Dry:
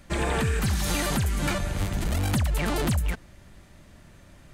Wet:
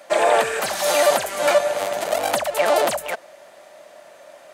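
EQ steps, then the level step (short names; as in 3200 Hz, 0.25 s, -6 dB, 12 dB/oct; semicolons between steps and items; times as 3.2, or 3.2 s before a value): resonant high-pass 610 Hz, resonance Q 4.9; +6.5 dB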